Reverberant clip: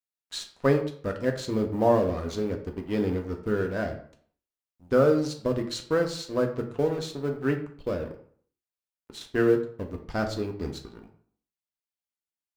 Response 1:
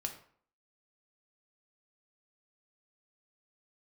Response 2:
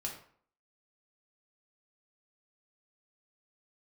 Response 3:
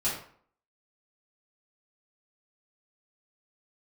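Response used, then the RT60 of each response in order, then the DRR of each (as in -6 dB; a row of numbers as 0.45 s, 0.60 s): 1; 0.55 s, 0.55 s, 0.55 s; 3.5 dB, -1.0 dB, -10.5 dB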